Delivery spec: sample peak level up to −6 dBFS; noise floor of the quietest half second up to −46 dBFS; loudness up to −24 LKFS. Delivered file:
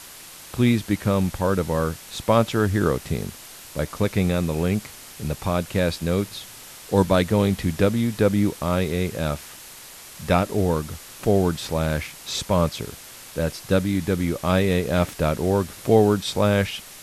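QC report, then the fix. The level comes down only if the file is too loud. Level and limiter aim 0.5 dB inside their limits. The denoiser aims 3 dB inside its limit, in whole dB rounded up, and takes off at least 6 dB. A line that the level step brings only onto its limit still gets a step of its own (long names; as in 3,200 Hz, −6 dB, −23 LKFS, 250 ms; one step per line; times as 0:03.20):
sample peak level −4.5 dBFS: out of spec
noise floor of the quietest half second −42 dBFS: out of spec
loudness −23.0 LKFS: out of spec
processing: broadband denoise 6 dB, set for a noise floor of −42 dBFS
level −1.5 dB
brickwall limiter −6.5 dBFS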